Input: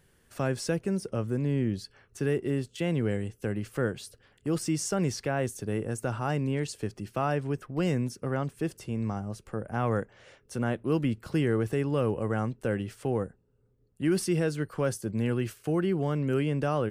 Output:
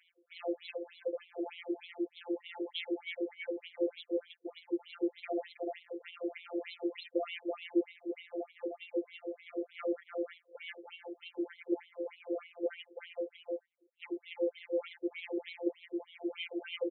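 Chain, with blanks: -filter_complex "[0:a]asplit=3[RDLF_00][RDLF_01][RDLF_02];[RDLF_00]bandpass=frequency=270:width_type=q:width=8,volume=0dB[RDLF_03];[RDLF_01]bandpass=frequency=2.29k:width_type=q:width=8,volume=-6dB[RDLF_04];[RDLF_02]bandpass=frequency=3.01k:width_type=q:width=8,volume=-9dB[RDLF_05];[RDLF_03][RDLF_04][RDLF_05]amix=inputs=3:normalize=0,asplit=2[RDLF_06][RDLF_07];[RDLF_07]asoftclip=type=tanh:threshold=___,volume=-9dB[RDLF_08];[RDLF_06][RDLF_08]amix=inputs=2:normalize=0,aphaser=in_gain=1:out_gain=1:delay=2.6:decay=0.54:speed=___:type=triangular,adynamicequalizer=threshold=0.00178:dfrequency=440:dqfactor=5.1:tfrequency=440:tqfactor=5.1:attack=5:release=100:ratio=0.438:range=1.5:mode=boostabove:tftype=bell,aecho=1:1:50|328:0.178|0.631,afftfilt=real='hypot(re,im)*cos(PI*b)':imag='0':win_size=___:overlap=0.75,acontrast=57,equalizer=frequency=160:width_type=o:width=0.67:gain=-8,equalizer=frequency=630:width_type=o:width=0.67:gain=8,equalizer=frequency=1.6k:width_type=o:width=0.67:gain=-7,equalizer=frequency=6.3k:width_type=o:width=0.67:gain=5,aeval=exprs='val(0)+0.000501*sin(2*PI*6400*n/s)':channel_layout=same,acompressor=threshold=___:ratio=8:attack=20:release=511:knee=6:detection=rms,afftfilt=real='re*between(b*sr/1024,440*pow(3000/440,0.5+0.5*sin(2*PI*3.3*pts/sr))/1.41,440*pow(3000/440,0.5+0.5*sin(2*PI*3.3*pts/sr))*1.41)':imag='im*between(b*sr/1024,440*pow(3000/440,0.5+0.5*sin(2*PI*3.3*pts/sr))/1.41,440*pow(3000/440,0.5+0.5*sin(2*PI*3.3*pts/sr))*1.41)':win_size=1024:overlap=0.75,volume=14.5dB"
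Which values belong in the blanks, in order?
-35.5dB, 0.51, 1024, -39dB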